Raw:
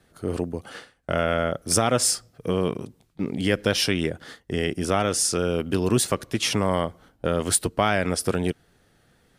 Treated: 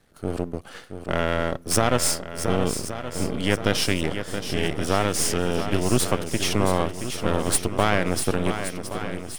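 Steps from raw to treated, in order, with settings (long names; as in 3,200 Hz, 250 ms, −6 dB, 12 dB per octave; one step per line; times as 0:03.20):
gain on one half-wave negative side −12 dB
on a send: feedback echo with a long and a short gap by turns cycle 1,123 ms, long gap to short 1.5 to 1, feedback 45%, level −9 dB
on the sum: level +2 dB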